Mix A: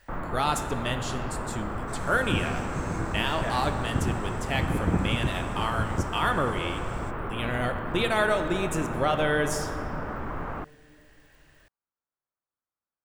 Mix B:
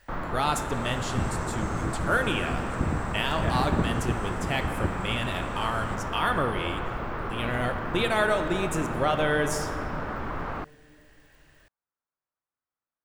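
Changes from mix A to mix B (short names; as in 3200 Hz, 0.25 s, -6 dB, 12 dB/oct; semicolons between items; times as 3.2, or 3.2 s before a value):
first sound: remove air absorption 340 m; second sound: entry -1.15 s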